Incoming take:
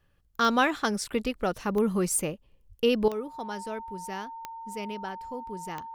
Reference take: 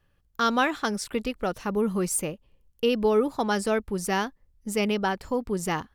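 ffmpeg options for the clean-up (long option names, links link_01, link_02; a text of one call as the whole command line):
ffmpeg -i in.wav -filter_complex "[0:a]adeclick=threshold=4,bandreject=frequency=910:width=30,asplit=3[link_01][link_02][link_03];[link_01]afade=type=out:start_time=2.68:duration=0.02[link_04];[link_02]highpass=frequency=140:width=0.5412,highpass=frequency=140:width=1.3066,afade=type=in:start_time=2.68:duration=0.02,afade=type=out:start_time=2.8:duration=0.02[link_05];[link_03]afade=type=in:start_time=2.8:duration=0.02[link_06];[link_04][link_05][link_06]amix=inputs=3:normalize=0,asetnsamples=nb_out_samples=441:pad=0,asendcmd='3.08 volume volume 11.5dB',volume=0dB" out.wav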